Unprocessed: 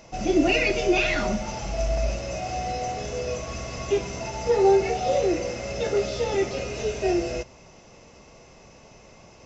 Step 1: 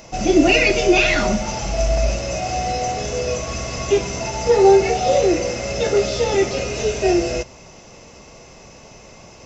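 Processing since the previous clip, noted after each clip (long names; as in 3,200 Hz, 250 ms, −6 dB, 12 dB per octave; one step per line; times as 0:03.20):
high-shelf EQ 6,500 Hz +7 dB
level +6.5 dB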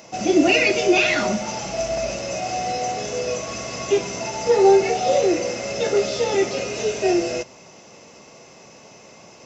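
high-pass filter 160 Hz 12 dB per octave
level −2 dB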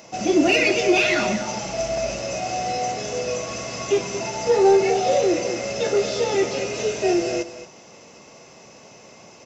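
single-tap delay 226 ms −12 dB
in parallel at −10.5 dB: hard clipping −15 dBFS, distortion −12 dB
on the sum: level −3 dB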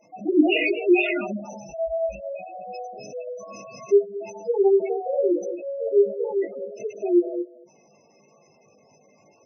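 flutter between parallel walls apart 3.4 metres, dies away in 0.23 s
gate on every frequency bin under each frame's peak −10 dB strong
expander for the loud parts 1.5 to 1, over −33 dBFS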